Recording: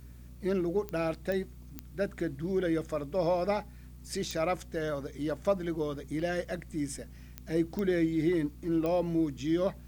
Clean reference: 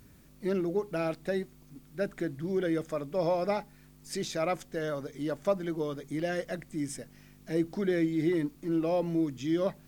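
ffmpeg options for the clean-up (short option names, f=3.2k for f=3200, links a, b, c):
-af "adeclick=t=4,bandreject=f=61:t=h:w=4,bandreject=f=122:t=h:w=4,bandreject=f=183:t=h:w=4,bandreject=f=244:t=h:w=4"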